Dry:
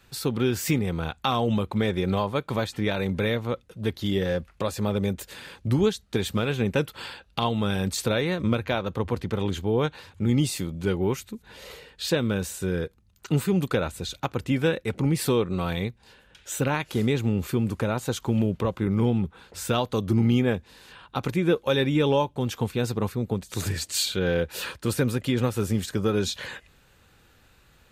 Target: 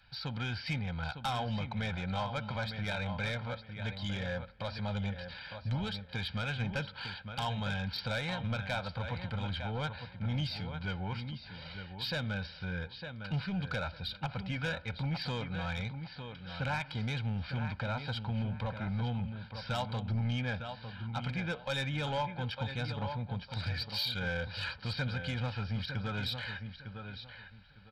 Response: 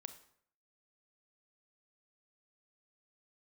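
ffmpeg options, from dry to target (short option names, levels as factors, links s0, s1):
-filter_complex "[0:a]tiltshelf=f=1200:g=-4,bandreject=f=670:w=20,asplit=2[s0][s1];[s1]adelay=905,lowpass=f=3900:p=1,volume=0.335,asplit=2[s2][s3];[s3]adelay=905,lowpass=f=3900:p=1,volume=0.22,asplit=2[s4][s5];[s5]adelay=905,lowpass=f=3900:p=1,volume=0.22[s6];[s0][s2][s4][s6]amix=inputs=4:normalize=0,asplit=2[s7][s8];[1:a]atrim=start_sample=2205,lowpass=2300[s9];[s8][s9]afir=irnorm=-1:irlink=0,volume=0.668[s10];[s7][s10]amix=inputs=2:normalize=0,aresample=11025,aresample=44100,equalizer=f=320:w=1:g=-7,asoftclip=type=tanh:threshold=0.0841,aecho=1:1:1.3:0.71,volume=0.422"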